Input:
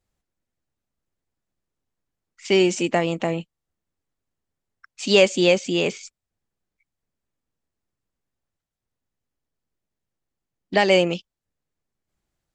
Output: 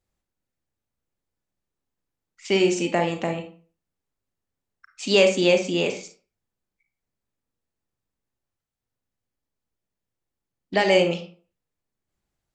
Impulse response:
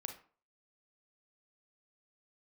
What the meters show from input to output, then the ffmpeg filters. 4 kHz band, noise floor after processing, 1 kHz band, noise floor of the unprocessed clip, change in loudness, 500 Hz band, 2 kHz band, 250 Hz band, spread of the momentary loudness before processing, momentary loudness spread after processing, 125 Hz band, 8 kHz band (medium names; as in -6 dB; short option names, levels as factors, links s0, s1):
-2.0 dB, -85 dBFS, -1.0 dB, -85 dBFS, -1.5 dB, -1.0 dB, -1.5 dB, -1.5 dB, 14 LU, 14 LU, -2.0 dB, -2.0 dB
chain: -filter_complex "[1:a]atrim=start_sample=2205[s0];[0:a][s0]afir=irnorm=-1:irlink=0,volume=1.12"